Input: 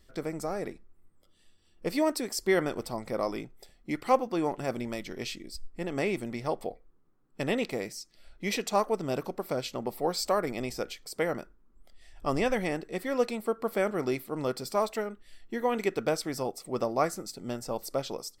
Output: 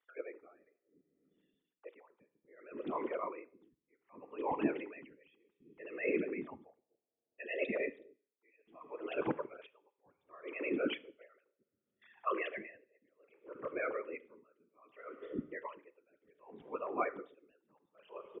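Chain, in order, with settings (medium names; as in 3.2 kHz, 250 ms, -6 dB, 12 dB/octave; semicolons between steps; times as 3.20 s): formants replaced by sine waves; gate with hold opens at -57 dBFS; peaking EQ 210 Hz +11 dB 0.63 oct; reverse; compression 6:1, threshold -38 dBFS, peak gain reduction 20.5 dB; reverse; peaking EQ 580 Hz -14 dB 0.25 oct; whisper effect; bands offset in time highs, lows 250 ms, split 370 Hz; on a send at -14.5 dB: reverberation RT60 1.0 s, pre-delay 23 ms; on the sum: logarithmic tremolo 0.65 Hz, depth 37 dB; trim +10.5 dB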